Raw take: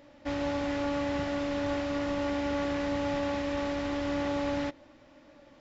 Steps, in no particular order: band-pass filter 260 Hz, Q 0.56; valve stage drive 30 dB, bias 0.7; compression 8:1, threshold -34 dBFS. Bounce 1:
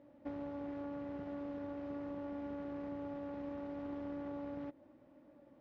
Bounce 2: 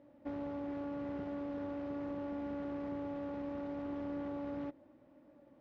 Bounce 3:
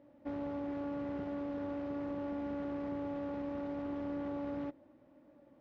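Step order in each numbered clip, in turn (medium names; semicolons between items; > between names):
compression > valve stage > band-pass filter; valve stage > compression > band-pass filter; valve stage > band-pass filter > compression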